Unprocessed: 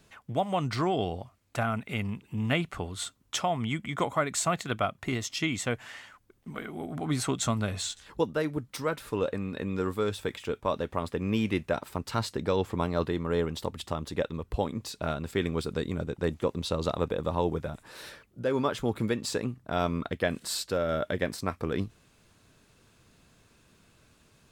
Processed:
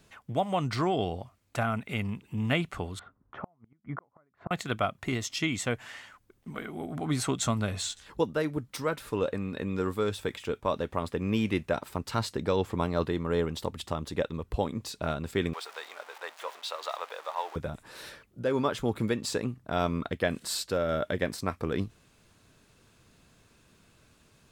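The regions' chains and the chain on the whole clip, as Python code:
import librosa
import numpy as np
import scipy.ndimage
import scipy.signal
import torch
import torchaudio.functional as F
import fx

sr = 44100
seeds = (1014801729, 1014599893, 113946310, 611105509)

y = fx.chain(x, sr, fx.lowpass(hz=1500.0, slope=24),
    fx.gate_flip(shuts_db=-24.0, range_db=-38), at=(2.99, 4.51))
y = fx.chain(y, sr, fx.zero_step(step_db=-36.5),
    fx.highpass(hz=720.0, slope=24),
    fx.high_shelf(hz=5200.0, db=-9.0), at=(15.53, 17.56))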